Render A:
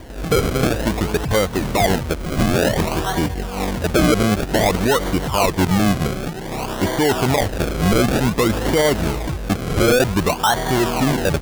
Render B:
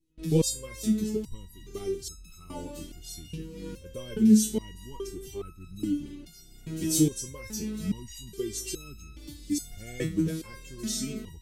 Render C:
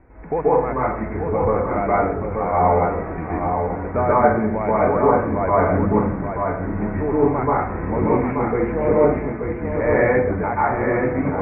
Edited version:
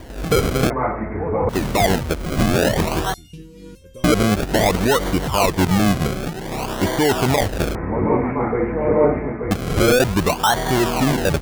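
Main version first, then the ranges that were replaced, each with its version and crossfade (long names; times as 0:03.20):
A
0:00.70–0:01.49: punch in from C
0:03.14–0:04.04: punch in from B
0:07.75–0:09.51: punch in from C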